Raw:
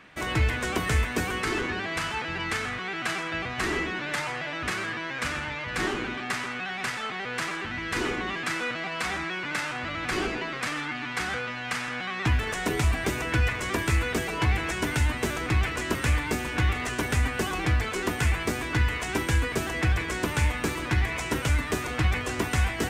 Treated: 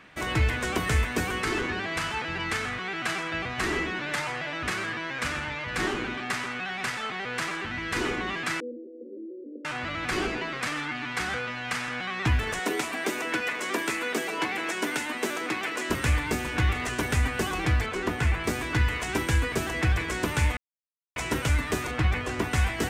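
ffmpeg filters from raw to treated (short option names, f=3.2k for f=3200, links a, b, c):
-filter_complex "[0:a]asettb=1/sr,asplit=3[a][b][c];[a]atrim=end=8.604[d];[b]atrim=start=8.6:end=9.65,asetpts=PTS-STARTPTS,afade=t=in:d=0.004:c=qsin,afade=t=out:st=1.046:d=0.004:c=qsin,asuperpass=centerf=350:order=20:qfactor=1.1[e];[c]atrim=start=9.646[f];[d][e]acrossfade=d=0.004:c1=hsin:c2=qsin[g];[g][f]acrossfade=d=0.004:c1=qsin:c2=hsin,asettb=1/sr,asplit=3[h][i][j];[h]atrim=end=12.594[k];[i]atrim=start=12.59:end=15.9,asetpts=PTS-STARTPTS,afade=t=in:d=0.004:c=qsin,afade=t=out:st=3.306:d=0.004:c=qsin,highpass=f=230:w=0.5412,highpass=f=230:w=1.3066[l];[j]atrim=start=15.896[m];[k][l]acrossfade=d=0.004:c1=hsin:c2=qsin[n];[n][m]acrossfade=d=0.004:c1=qsin:c2=hsin,asettb=1/sr,asplit=3[o][p][q];[o]atrim=end=17.864[r];[p]atrim=start=17.86:end=18.44,asetpts=PTS-STARTPTS,afade=t=in:d=0.004:c=qsin,afade=t=out:st=0.576:d=0.004:c=qsin,highshelf=f=5k:g=-10.5[s];[q]atrim=start=18.436[t];[r][s]acrossfade=d=0.004:c1=hsin:c2=qsin[u];[u][t]acrossfade=d=0.004:c1=qsin:c2=hsin,asettb=1/sr,asplit=3[v][w][x];[v]atrim=end=21.914[y];[w]atrim=start=21.91:end=22.54,asetpts=PTS-STARTPTS,afade=t=in:d=0.004:c=qsin,afade=t=out:st=0.626:d=0.004:c=qsin,highshelf=f=4.4k:g=-7[z];[x]atrim=start=22.536[aa];[y][z]acrossfade=d=0.004:c1=hsin:c2=qsin[ab];[ab][aa]acrossfade=d=0.004:c1=qsin:c2=hsin,asplit=3[ac][ad][ae];[ac]atrim=end=20.57,asetpts=PTS-STARTPTS,afade=t=out:st=20.566:d=0.004:c=hsin[af];[ad]atrim=start=20.57:end=21.16,asetpts=PTS-STARTPTS,volume=0[ag];[ae]atrim=start=21.16,asetpts=PTS-STARTPTS,afade=t=in:d=0.004:c=hsin[ah];[af][ag][ah]concat=n=3:v=0:a=1"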